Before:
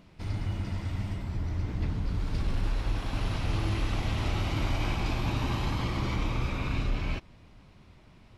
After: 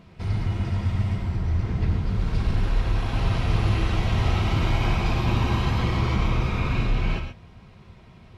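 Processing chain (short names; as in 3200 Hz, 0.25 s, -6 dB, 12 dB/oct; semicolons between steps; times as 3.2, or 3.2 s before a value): high shelf 4900 Hz -7 dB; notch comb 290 Hz; non-linear reverb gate 0.15 s rising, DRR 6 dB; gain +7 dB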